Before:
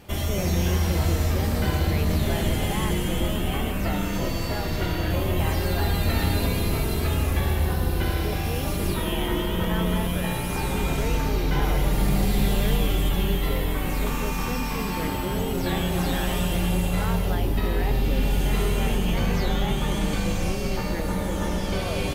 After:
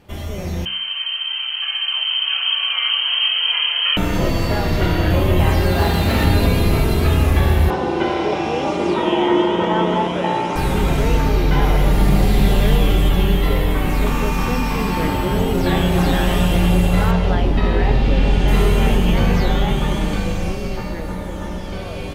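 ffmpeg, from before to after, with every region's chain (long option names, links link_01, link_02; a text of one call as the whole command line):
ffmpeg -i in.wav -filter_complex "[0:a]asettb=1/sr,asplit=3[link_01][link_02][link_03];[link_01]atrim=end=0.654[link_04];[link_02]atrim=start=0.65:end=3.97,asetpts=PTS-STARTPTS,afade=type=in:duration=0.004:curve=qsin,afade=type=out:start_time=3.316:duration=0.004:curve=qsin,lowpass=frequency=2700:width_type=q:width=0.5098,lowpass=frequency=2700:width_type=q:width=0.6013,lowpass=frequency=2700:width_type=q:width=0.9,lowpass=frequency=2700:width_type=q:width=2.563,afreqshift=-3200,highpass=930[link_05];[link_03]atrim=start=3.966[link_06];[link_04][link_05]acrossfade=duration=0.004:curve1=hsin:curve2=qsin[link_07];[link_07][link_06]acrossfade=duration=0.004:curve1=qsin:curve2=hsin,asettb=1/sr,asplit=3[link_08][link_09][link_10];[link_08]atrim=end=5.724[link_11];[link_09]atrim=start=5.72:end=6.25,asetpts=PTS-STARTPTS,afade=type=in:duration=0.004:curve=qsin,afade=type=out:start_time=0.526:duration=0.004:curve=qsin,highpass=frequency=47:width=0.5412,highpass=frequency=47:width=1.3066,aeval=exprs='0.119*(abs(mod(val(0)/0.119+3,4)-2)-1)':channel_layout=same,asplit=2[link_12][link_13];[link_13]adelay=30,volume=-5dB[link_14];[link_12][link_14]amix=inputs=2:normalize=0,atrim=end_sample=23373[link_15];[link_10]atrim=start=6.246[link_16];[link_11][link_15]acrossfade=duration=0.004:curve1=hsin:curve2=qsin[link_17];[link_17][link_16]acrossfade=duration=0.004:curve1=qsin:curve2=hsin,asettb=1/sr,asplit=3[link_18][link_19][link_20];[link_18]atrim=end=7.704[link_21];[link_19]atrim=start=7.7:end=10.56,asetpts=PTS-STARTPTS,afade=type=in:duration=0.004:curve=qsin,afade=type=out:start_time=2.856:duration=0.004:curve=qsin,highpass=240,equalizer=frequency=350:width_type=q:width=4:gain=6,equalizer=frequency=570:width_type=q:width=4:gain=3,equalizer=frequency=870:width_type=q:width=4:gain=8,equalizer=frequency=4300:width_type=q:width=4:gain=-6,lowpass=frequency=6700:width=0.5412,lowpass=frequency=6700:width=1.3066,bandreject=frequency=1700:width=12[link_22];[link_20]atrim=start=10.556[link_23];[link_21][link_22]acrossfade=duration=0.004:curve1=hsin:curve2=qsin[link_24];[link_24][link_23]acrossfade=duration=0.004:curve1=qsin:curve2=hsin,asettb=1/sr,asplit=3[link_25][link_26][link_27];[link_25]atrim=end=17.114[link_28];[link_26]atrim=start=17.11:end=18.48,asetpts=PTS-STARTPTS,afade=type=in:duration=0.004:curve=qsin,afade=type=out:start_time=1.366:duration=0.004:curve=qsin,lowpass=5900,bandreject=frequency=50:width_type=h:width=6,bandreject=frequency=100:width_type=h:width=6,bandreject=frequency=150:width_type=h:width=6,bandreject=frequency=200:width_type=h:width=6,bandreject=frequency=250:width_type=h:width=6,bandreject=frequency=300:width_type=h:width=6,bandreject=frequency=350:width_type=h:width=6,bandreject=frequency=400:width_type=h:width=6[link_29];[link_27]atrim=start=18.476[link_30];[link_28][link_29]acrossfade=duration=0.004:curve1=hsin:curve2=qsin[link_31];[link_31][link_30]acrossfade=duration=0.004:curve1=qsin:curve2=hsin,highshelf=frequency=4900:gain=-9,bandreject=frequency=65.46:width_type=h:width=4,bandreject=frequency=130.92:width_type=h:width=4,bandreject=frequency=196.38:width_type=h:width=4,bandreject=frequency=261.84:width_type=h:width=4,bandreject=frequency=327.3:width_type=h:width=4,bandreject=frequency=392.76:width_type=h:width=4,bandreject=frequency=458.22:width_type=h:width=4,bandreject=frequency=523.68:width_type=h:width=4,bandreject=frequency=589.14:width_type=h:width=4,bandreject=frequency=654.6:width_type=h:width=4,bandreject=frequency=720.06:width_type=h:width=4,bandreject=frequency=785.52:width_type=h:width=4,bandreject=frequency=850.98:width_type=h:width=4,bandreject=frequency=916.44:width_type=h:width=4,bandreject=frequency=981.9:width_type=h:width=4,bandreject=frequency=1047.36:width_type=h:width=4,bandreject=frequency=1112.82:width_type=h:width=4,bandreject=frequency=1178.28:width_type=h:width=4,bandreject=frequency=1243.74:width_type=h:width=4,bandreject=frequency=1309.2:width_type=h:width=4,bandreject=frequency=1374.66:width_type=h:width=4,bandreject=frequency=1440.12:width_type=h:width=4,bandreject=frequency=1505.58:width_type=h:width=4,bandreject=frequency=1571.04:width_type=h:width=4,bandreject=frequency=1636.5:width_type=h:width=4,bandreject=frequency=1701.96:width_type=h:width=4,bandreject=frequency=1767.42:width_type=h:width=4,bandreject=frequency=1832.88:width_type=h:width=4,bandreject=frequency=1898.34:width_type=h:width=4,bandreject=frequency=1963.8:width_type=h:width=4,bandreject=frequency=2029.26:width_type=h:width=4,bandreject=frequency=2094.72:width_type=h:width=4,bandreject=frequency=2160.18:width_type=h:width=4,bandreject=frequency=2225.64:width_type=h:width=4,bandreject=frequency=2291.1:width_type=h:width=4,bandreject=frequency=2356.56:width_type=h:width=4,bandreject=frequency=2422.02:width_type=h:width=4,bandreject=frequency=2487.48:width_type=h:width=4,dynaudnorm=framelen=230:gausssize=21:maxgain=11.5dB,volume=-1dB" out.wav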